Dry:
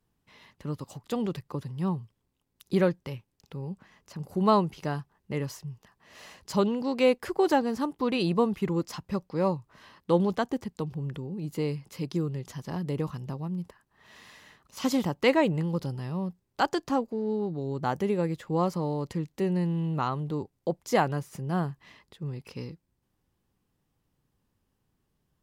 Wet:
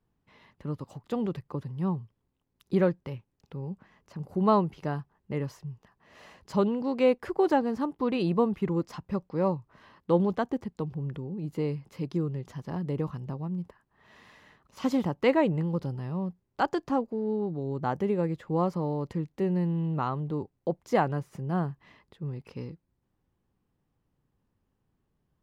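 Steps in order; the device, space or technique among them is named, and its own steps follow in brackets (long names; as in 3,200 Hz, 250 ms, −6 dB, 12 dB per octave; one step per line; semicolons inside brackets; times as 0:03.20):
through cloth (high-shelf EQ 3,300 Hz −13 dB)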